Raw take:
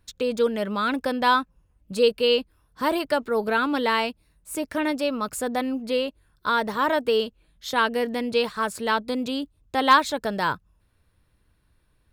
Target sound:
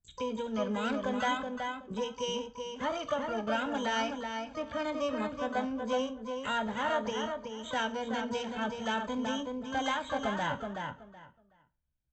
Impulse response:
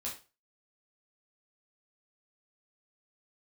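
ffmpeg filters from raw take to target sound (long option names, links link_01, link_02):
-filter_complex "[0:a]agate=range=-20dB:threshold=-53dB:ratio=16:detection=peak,aresample=8000,aresample=44100,equalizer=frequency=1500:width=0.85:gain=-7,acompressor=threshold=-24dB:ratio=5,aecho=1:1:1.3:0.86,asplit=2[link_01][link_02];[link_02]adelay=375,lowpass=frequency=2500:poles=1,volume=-4.5dB,asplit=2[link_03][link_04];[link_04]adelay=375,lowpass=frequency=2500:poles=1,volume=0.2,asplit=2[link_05][link_06];[link_06]adelay=375,lowpass=frequency=2500:poles=1,volume=0.2[link_07];[link_01][link_03][link_05][link_07]amix=inputs=4:normalize=0,asplit=2[link_08][link_09];[1:a]atrim=start_sample=2205[link_10];[link_09][link_10]afir=irnorm=-1:irlink=0,volume=-6.5dB[link_11];[link_08][link_11]amix=inputs=2:normalize=0,asplit=2[link_12][link_13];[link_13]asetrate=88200,aresample=44100,atempo=0.5,volume=-8dB[link_14];[link_12][link_14]amix=inputs=2:normalize=0,volume=-8.5dB"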